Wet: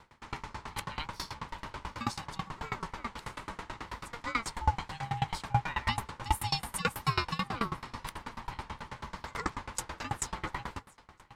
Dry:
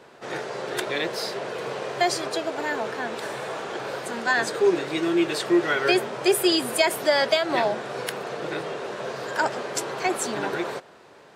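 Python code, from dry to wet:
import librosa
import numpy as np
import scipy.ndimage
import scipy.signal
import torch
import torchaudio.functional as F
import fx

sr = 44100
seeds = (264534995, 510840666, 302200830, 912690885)

p1 = scipy.signal.sosfilt(scipy.signal.butter(6, 300.0, 'highpass', fs=sr, output='sos'), x)
p2 = p1 * np.sin(2.0 * np.pi * 470.0 * np.arange(len(p1)) / sr)
p3 = p2 + fx.echo_feedback(p2, sr, ms=703, feedback_pct=46, wet_db=-20.5, dry=0)
y = fx.tremolo_decay(p3, sr, direction='decaying', hz=9.2, depth_db=25)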